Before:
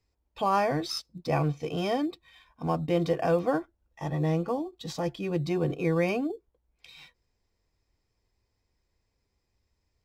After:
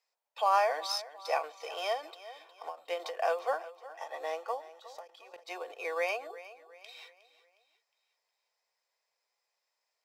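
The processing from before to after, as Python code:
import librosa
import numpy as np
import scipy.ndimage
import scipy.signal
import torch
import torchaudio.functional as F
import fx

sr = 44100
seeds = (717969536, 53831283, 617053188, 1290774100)

y = scipy.signal.sosfilt(scipy.signal.butter(6, 550.0, 'highpass', fs=sr, output='sos'), x)
y = fx.level_steps(y, sr, step_db=19, at=(4.6, 5.47), fade=0.02)
y = fx.echo_feedback(y, sr, ms=361, feedback_pct=42, wet_db=-16.5)
y = fx.end_taper(y, sr, db_per_s=180.0)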